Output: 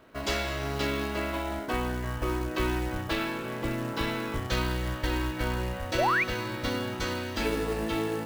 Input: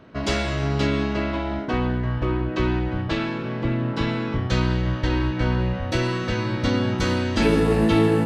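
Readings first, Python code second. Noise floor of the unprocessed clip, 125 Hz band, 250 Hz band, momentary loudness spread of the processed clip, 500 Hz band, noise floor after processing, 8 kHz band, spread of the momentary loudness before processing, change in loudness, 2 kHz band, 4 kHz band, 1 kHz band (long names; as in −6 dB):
−29 dBFS, −11.0 dB, −10.0 dB, 5 LU, −7.0 dB, −36 dBFS, −1.5 dB, 7 LU, −7.0 dB, −2.5 dB, −4.0 dB, −2.5 dB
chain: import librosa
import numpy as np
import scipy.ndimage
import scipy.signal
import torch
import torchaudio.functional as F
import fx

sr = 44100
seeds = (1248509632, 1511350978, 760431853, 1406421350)

y = fx.peak_eq(x, sr, hz=150.0, db=-10.0, octaves=1.9)
y = fx.rider(y, sr, range_db=10, speed_s=2.0)
y = fx.quant_float(y, sr, bits=2)
y = fx.spec_paint(y, sr, seeds[0], shape='rise', start_s=5.98, length_s=0.26, low_hz=520.0, high_hz=2600.0, level_db=-21.0)
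y = y * 10.0 ** (-4.0 / 20.0)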